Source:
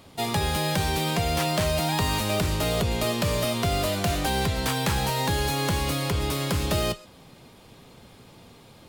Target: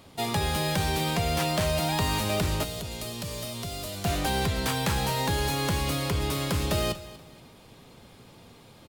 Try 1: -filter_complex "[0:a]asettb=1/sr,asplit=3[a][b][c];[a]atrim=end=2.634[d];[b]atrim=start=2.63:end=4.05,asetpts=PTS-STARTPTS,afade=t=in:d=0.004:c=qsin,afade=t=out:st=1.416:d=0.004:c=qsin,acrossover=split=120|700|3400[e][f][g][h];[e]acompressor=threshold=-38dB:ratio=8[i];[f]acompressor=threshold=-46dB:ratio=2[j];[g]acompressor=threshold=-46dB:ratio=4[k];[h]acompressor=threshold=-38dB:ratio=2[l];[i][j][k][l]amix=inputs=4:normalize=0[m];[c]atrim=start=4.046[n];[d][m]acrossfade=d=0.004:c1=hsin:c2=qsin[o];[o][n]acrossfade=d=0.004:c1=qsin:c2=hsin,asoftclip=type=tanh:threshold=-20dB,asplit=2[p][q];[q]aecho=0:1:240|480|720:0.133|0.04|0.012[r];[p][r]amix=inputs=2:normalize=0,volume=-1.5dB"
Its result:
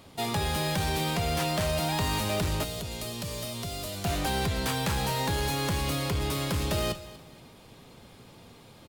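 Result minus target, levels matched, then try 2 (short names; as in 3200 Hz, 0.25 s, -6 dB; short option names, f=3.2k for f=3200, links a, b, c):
soft clip: distortion +16 dB
-filter_complex "[0:a]asettb=1/sr,asplit=3[a][b][c];[a]atrim=end=2.634[d];[b]atrim=start=2.63:end=4.05,asetpts=PTS-STARTPTS,afade=t=in:d=0.004:c=qsin,afade=t=out:st=1.416:d=0.004:c=qsin,acrossover=split=120|700|3400[e][f][g][h];[e]acompressor=threshold=-38dB:ratio=8[i];[f]acompressor=threshold=-46dB:ratio=2[j];[g]acompressor=threshold=-46dB:ratio=4[k];[h]acompressor=threshold=-38dB:ratio=2[l];[i][j][k][l]amix=inputs=4:normalize=0[m];[c]atrim=start=4.046[n];[d][m]acrossfade=d=0.004:c1=hsin:c2=qsin[o];[o][n]acrossfade=d=0.004:c1=qsin:c2=hsin,asoftclip=type=tanh:threshold=-10dB,asplit=2[p][q];[q]aecho=0:1:240|480|720:0.133|0.04|0.012[r];[p][r]amix=inputs=2:normalize=0,volume=-1.5dB"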